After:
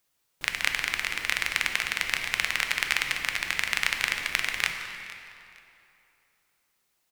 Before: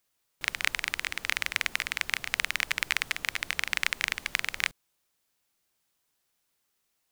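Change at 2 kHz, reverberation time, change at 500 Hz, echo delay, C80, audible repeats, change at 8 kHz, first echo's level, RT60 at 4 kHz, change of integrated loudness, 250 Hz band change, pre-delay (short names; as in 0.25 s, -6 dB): +3.0 dB, 2.8 s, +3.0 dB, 0.461 s, 6.0 dB, 2, +2.5 dB, -18.0 dB, 2.1 s, +2.5 dB, +3.5 dB, 5 ms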